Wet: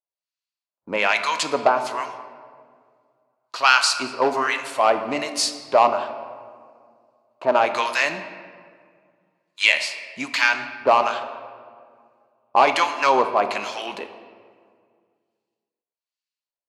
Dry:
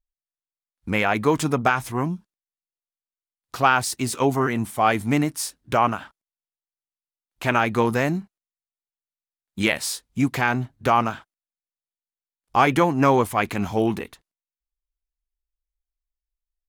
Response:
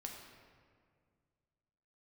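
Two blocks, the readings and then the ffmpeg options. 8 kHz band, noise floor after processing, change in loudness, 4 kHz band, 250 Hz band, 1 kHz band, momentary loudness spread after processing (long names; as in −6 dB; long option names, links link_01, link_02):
+1.5 dB, below −85 dBFS, +1.5 dB, +8.0 dB, −10.5 dB, +2.0 dB, 16 LU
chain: -filter_complex "[0:a]bandreject=frequency=750:width=19,acrossover=split=1100[link_01][link_02];[link_01]aeval=exprs='val(0)*(1-1/2+1/2*cos(2*PI*1.2*n/s))':channel_layout=same[link_03];[link_02]aeval=exprs='val(0)*(1-1/2-1/2*cos(2*PI*1.2*n/s))':channel_layout=same[link_04];[link_03][link_04]amix=inputs=2:normalize=0,asplit=2[link_05][link_06];[link_06]aeval=exprs='0.141*(abs(mod(val(0)/0.141+3,4)-2)-1)':channel_layout=same,volume=-6dB[link_07];[link_05][link_07]amix=inputs=2:normalize=0,highpass=460,equalizer=frequency=610:width_type=q:width=4:gain=7,equalizer=frequency=980:width_type=q:width=4:gain=5,equalizer=frequency=2700:width_type=q:width=4:gain=6,equalizer=frequency=4400:width_type=q:width=4:gain=9,equalizer=frequency=8800:width_type=q:width=4:gain=-6,lowpass=frequency=9400:width=0.5412,lowpass=frequency=9400:width=1.3066,asplit=2[link_08][link_09];[1:a]atrim=start_sample=2205[link_10];[link_09][link_10]afir=irnorm=-1:irlink=0,volume=3dB[link_11];[link_08][link_11]amix=inputs=2:normalize=0,adynamicequalizer=threshold=0.0708:dfrequency=1700:dqfactor=0.7:tfrequency=1700:tqfactor=0.7:attack=5:release=100:ratio=0.375:range=1.5:mode=boostabove:tftype=highshelf,volume=-3.5dB"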